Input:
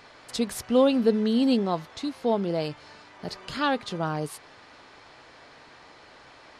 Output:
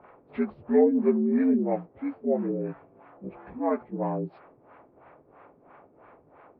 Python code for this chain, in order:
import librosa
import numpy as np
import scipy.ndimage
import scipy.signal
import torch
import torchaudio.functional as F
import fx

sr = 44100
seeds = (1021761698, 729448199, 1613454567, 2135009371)

y = fx.partial_stretch(x, sr, pct=78)
y = fx.filter_lfo_lowpass(y, sr, shape='sine', hz=3.0, low_hz=320.0, high_hz=1500.0, q=1.0)